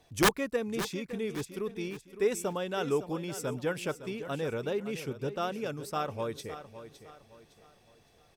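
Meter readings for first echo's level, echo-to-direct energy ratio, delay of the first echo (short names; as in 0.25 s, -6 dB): -12.5 dB, -12.0 dB, 0.561 s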